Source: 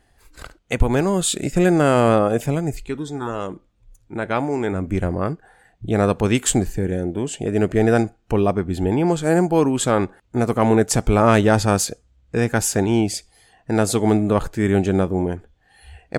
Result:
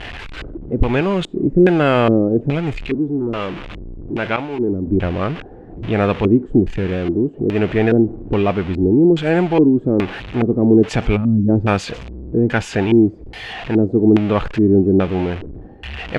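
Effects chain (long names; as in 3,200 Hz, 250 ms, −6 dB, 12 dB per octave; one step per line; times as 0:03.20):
converter with a step at zero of −26 dBFS
auto-filter low-pass square 1.2 Hz 340–2,800 Hz
0:04.36–0:04.87: downward expander −14 dBFS
0:11.16–0:11.49: gain on a spectral selection 300–10,000 Hz −22 dB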